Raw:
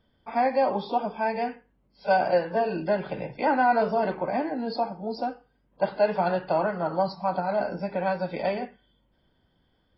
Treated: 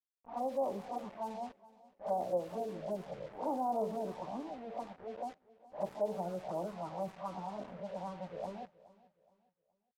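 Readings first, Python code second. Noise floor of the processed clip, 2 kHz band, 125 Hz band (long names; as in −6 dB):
−83 dBFS, −26.0 dB, −12.0 dB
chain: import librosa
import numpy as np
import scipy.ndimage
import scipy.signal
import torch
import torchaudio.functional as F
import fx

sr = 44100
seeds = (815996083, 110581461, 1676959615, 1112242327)

y = fx.spec_swells(x, sr, rise_s=0.31)
y = scipy.signal.sosfilt(scipy.signal.ellip(4, 1.0, 40, 1200.0, 'lowpass', fs=sr, output='sos'), y)
y = fx.env_flanger(y, sr, rest_ms=5.2, full_db=-18.5)
y = fx.comb_fb(y, sr, f0_hz=110.0, decay_s=0.97, harmonics='all', damping=0.0, mix_pct=50)
y = np.where(np.abs(y) >= 10.0 ** (-45.5 / 20.0), y, 0.0)
y = fx.env_lowpass(y, sr, base_hz=610.0, full_db=-30.5)
y = fx.echo_feedback(y, sr, ms=420, feedback_pct=34, wet_db=-20.5)
y = y * librosa.db_to_amplitude(-4.5)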